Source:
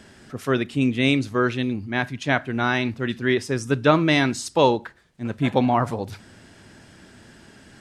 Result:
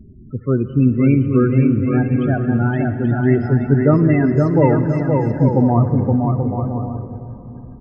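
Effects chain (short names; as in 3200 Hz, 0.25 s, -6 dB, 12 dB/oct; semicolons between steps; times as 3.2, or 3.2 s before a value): RIAA curve playback; loudest bins only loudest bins 16; bouncing-ball echo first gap 0.52 s, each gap 0.6×, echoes 5; on a send at -11 dB: reverb RT60 4.1 s, pre-delay 51 ms; on the sum: gain -1 dB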